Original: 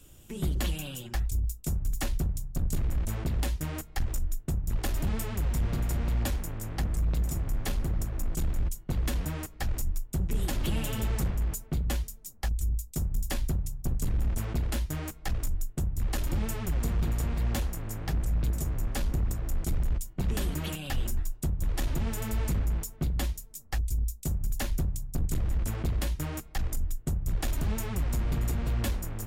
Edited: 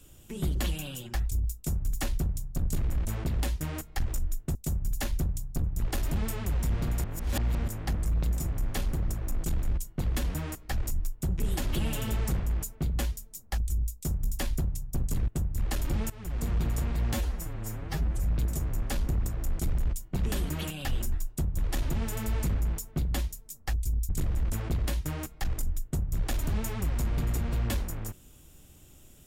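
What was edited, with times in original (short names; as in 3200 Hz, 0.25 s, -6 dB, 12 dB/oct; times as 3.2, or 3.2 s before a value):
5.95–6.59 reverse
14.19–15.7 cut
16.52–16.94 fade in, from -17 dB
17.55–18.29 stretch 1.5×
24.14–25.23 move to 4.55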